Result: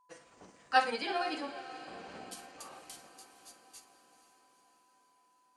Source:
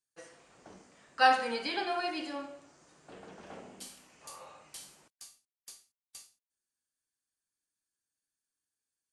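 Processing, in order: granular stretch 0.61×, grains 111 ms; whistle 1 kHz -67 dBFS; echo that smears into a reverb 475 ms, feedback 60%, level -14 dB

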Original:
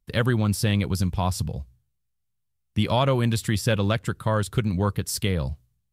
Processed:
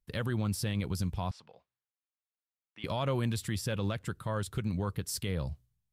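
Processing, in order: peak limiter -14.5 dBFS, peak gain reduction 5 dB; 1.31–2.84 s: band-pass 790–2600 Hz; trim -7.5 dB

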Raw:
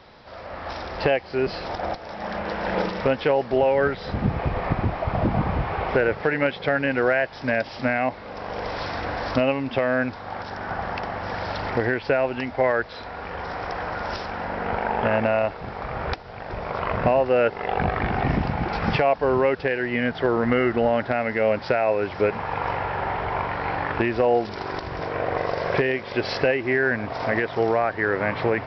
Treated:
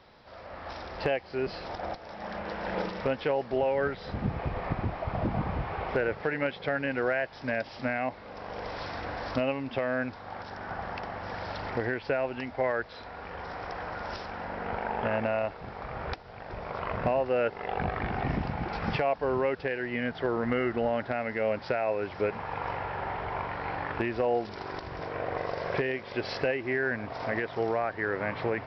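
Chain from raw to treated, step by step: hard clipper -9 dBFS, distortion -51 dB; trim -7.5 dB

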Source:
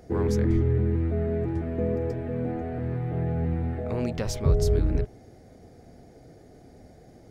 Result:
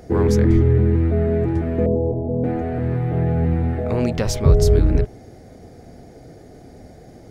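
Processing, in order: 1.86–2.44 s: steep low-pass 920 Hz 48 dB/octave; trim +8 dB

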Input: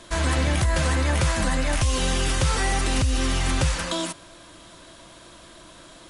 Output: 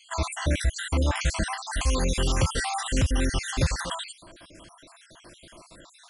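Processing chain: random holes in the spectrogram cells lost 59%; 1.86–2.49 s: crackle 55 per s -> 250 per s -42 dBFS

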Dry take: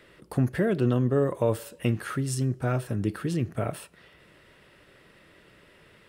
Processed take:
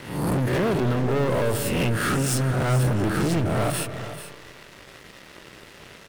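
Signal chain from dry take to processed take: reverse spectral sustain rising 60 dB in 0.64 s; compression 4:1, threshold -25 dBFS, peak gain reduction 6.5 dB; waveshaping leveller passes 5; delay 437 ms -12.5 dB; on a send at -12 dB: reverberation RT60 2.0 s, pre-delay 175 ms; on the sum: trim -5 dB

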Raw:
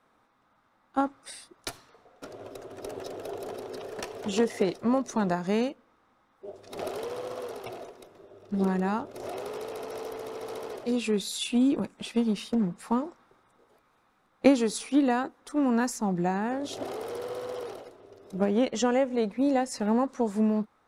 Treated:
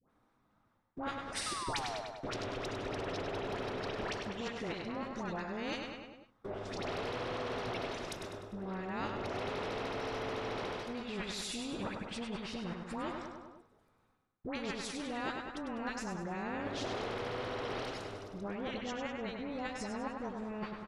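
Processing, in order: phase dispersion highs, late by 99 ms, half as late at 1.1 kHz; gate -53 dBFS, range -25 dB; bass shelf 300 Hz +11.5 dB; reverse; compression 12:1, threshold -33 dBFS, peak gain reduction 24 dB; reverse; low-pass that closes with the level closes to 2.4 kHz, closed at -34 dBFS; painted sound fall, 1.46–2.01 s, 600–1300 Hz -36 dBFS; on a send: feedback delay 100 ms, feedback 47%, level -8.5 dB; on the sum: spectrum-flattening compressor 2:1

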